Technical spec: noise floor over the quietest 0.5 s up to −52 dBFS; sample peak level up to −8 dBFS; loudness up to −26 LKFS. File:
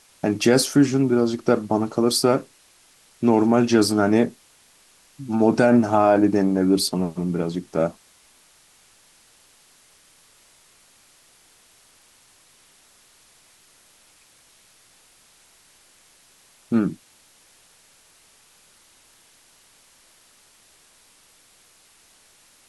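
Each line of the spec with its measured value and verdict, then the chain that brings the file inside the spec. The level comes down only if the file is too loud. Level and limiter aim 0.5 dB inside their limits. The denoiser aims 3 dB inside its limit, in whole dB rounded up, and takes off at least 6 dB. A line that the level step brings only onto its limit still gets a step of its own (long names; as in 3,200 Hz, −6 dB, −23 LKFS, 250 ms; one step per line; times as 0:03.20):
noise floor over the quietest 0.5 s −56 dBFS: in spec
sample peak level −6.0 dBFS: out of spec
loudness −20.0 LKFS: out of spec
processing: level −6.5 dB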